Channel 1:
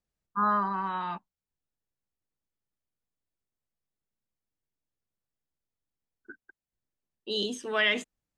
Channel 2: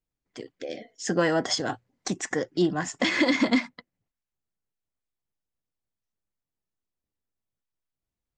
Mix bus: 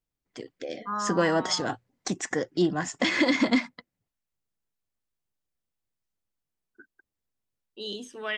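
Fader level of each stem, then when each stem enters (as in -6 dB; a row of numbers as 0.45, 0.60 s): -5.5, -0.5 dB; 0.50, 0.00 s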